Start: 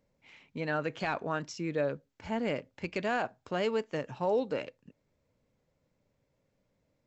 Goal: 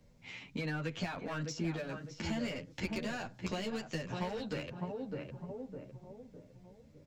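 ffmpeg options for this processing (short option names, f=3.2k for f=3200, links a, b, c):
-filter_complex "[0:a]asetnsamples=n=441:p=0,asendcmd='1.91 equalizer g 15;4.05 equalizer g 6.5',equalizer=f=5.7k:t=o:w=2.6:g=6.5,acompressor=threshold=-31dB:ratio=6,asplit=2[a][b];[b]adelay=607,lowpass=f=1k:p=1,volume=-7dB,asplit=2[c][d];[d]adelay=607,lowpass=f=1k:p=1,volume=0.44,asplit=2[e][f];[f]adelay=607,lowpass=f=1k:p=1,volume=0.44,asplit=2[g][h];[h]adelay=607,lowpass=f=1k:p=1,volume=0.44,asplit=2[i][j];[j]adelay=607,lowpass=f=1k:p=1,volume=0.44[k];[a][c][e][g][i][k]amix=inputs=6:normalize=0,volume=29dB,asoftclip=hard,volume=-29dB,acrossover=split=200|1500[l][m][n];[l]acompressor=threshold=-57dB:ratio=4[o];[m]acompressor=threshold=-47dB:ratio=4[p];[n]acompressor=threshold=-49dB:ratio=4[q];[o][p][q]amix=inputs=3:normalize=0,bass=f=250:g=10,treble=f=4k:g=-1,asplit=2[r][s];[s]adelay=10.2,afreqshift=1.3[t];[r][t]amix=inputs=2:normalize=1,volume=8dB"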